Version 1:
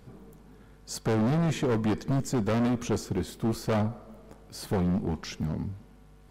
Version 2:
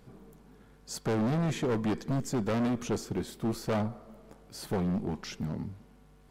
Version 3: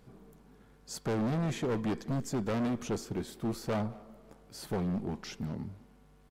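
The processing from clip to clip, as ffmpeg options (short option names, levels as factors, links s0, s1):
-af "equalizer=f=76:w=1.5:g=-6,volume=0.75"
-filter_complex "[0:a]asplit=2[s0][s1];[s1]adelay=200,highpass=300,lowpass=3400,asoftclip=type=hard:threshold=0.0282,volume=0.112[s2];[s0][s2]amix=inputs=2:normalize=0,volume=0.75"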